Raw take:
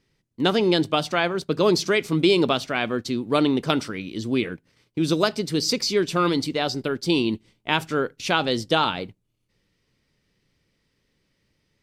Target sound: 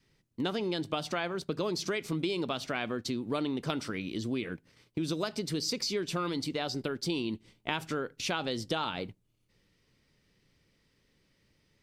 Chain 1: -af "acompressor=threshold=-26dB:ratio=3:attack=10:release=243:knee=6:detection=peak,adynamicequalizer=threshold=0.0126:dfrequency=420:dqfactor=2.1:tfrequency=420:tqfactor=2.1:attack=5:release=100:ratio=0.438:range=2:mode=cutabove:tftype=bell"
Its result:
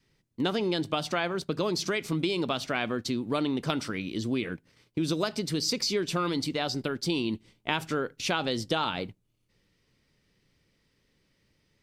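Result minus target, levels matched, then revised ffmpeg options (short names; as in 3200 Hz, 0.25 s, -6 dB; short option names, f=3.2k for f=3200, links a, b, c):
compressor: peak gain reduction -4.5 dB
-af "acompressor=threshold=-32.5dB:ratio=3:attack=10:release=243:knee=6:detection=peak,adynamicequalizer=threshold=0.0126:dfrequency=420:dqfactor=2.1:tfrequency=420:tqfactor=2.1:attack=5:release=100:ratio=0.438:range=2:mode=cutabove:tftype=bell"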